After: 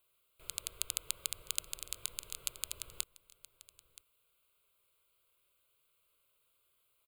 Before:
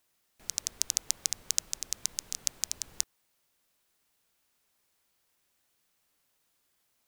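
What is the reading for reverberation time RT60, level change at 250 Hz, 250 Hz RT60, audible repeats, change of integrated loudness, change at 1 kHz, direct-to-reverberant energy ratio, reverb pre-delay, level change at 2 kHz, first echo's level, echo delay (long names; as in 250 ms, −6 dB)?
no reverb audible, −7.5 dB, no reverb audible, 1, −7.0 dB, −1.5 dB, no reverb audible, no reverb audible, −2.0 dB, −18.5 dB, 974 ms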